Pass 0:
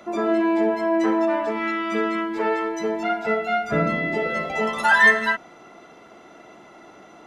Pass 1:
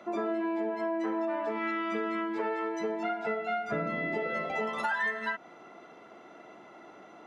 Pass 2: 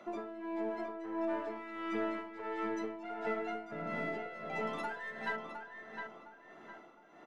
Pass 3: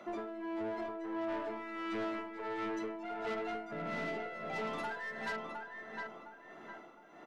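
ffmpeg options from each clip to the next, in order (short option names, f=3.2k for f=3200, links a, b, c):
-af "highpass=f=190:p=1,highshelf=f=4.8k:g=-11.5,acompressor=threshold=-25dB:ratio=6,volume=-3.5dB"
-filter_complex "[0:a]asplit=2[a][b];[b]aeval=exprs='clip(val(0),-1,0.00891)':c=same,volume=-8.5dB[c];[a][c]amix=inputs=2:normalize=0,tremolo=f=1.5:d=0.71,asplit=2[d][e];[e]adelay=710,lowpass=f=3.1k:p=1,volume=-5.5dB,asplit=2[f][g];[g]adelay=710,lowpass=f=3.1k:p=1,volume=0.36,asplit=2[h][i];[i]adelay=710,lowpass=f=3.1k:p=1,volume=0.36,asplit=2[j][k];[k]adelay=710,lowpass=f=3.1k:p=1,volume=0.36[l];[d][f][h][j][l]amix=inputs=5:normalize=0,volume=-6.5dB"
-af "asoftclip=type=tanh:threshold=-35.5dB,volume=2.5dB"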